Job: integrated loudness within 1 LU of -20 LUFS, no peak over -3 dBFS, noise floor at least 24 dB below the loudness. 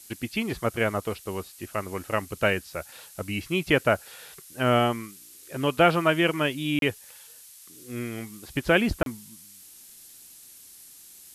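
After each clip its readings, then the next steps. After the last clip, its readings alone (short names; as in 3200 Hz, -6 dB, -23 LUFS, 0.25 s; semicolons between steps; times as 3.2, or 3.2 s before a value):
dropouts 2; longest dropout 32 ms; noise floor -49 dBFS; noise floor target -50 dBFS; loudness -26.0 LUFS; peak -6.0 dBFS; loudness target -20.0 LUFS
-> interpolate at 6.79/9.03, 32 ms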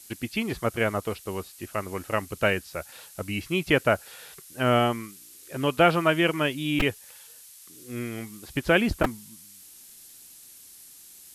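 dropouts 0; noise floor -49 dBFS; noise floor target -50 dBFS
-> denoiser 6 dB, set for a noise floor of -49 dBFS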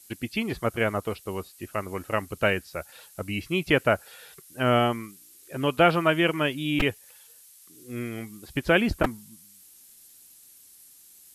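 noise floor -53 dBFS; loudness -26.0 LUFS; peak -6.0 dBFS; loudness target -20.0 LUFS
-> gain +6 dB; limiter -3 dBFS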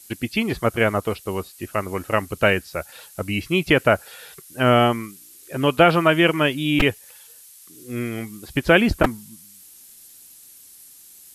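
loudness -20.5 LUFS; peak -3.0 dBFS; noise floor -47 dBFS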